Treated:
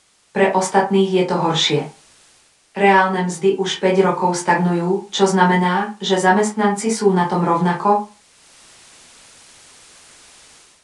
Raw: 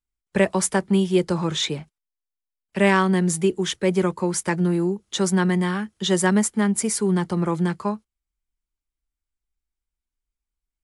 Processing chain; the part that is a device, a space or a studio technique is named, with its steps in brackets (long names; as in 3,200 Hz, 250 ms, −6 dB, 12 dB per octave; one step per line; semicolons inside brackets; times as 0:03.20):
filmed off a television (band-pass filter 180–6,700 Hz; parametric band 830 Hz +11 dB 0.45 octaves; convolution reverb RT60 0.30 s, pre-delay 12 ms, DRR −3 dB; white noise bed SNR 34 dB; automatic gain control gain up to 12 dB; level −1 dB; AAC 96 kbit/s 22,050 Hz)